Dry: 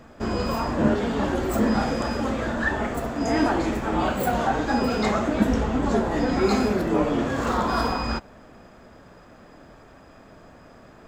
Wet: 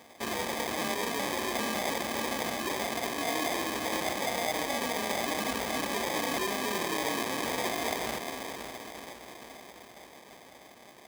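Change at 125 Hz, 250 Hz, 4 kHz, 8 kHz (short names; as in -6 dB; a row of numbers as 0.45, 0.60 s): -17.5, -13.5, +2.0, +5.5 dB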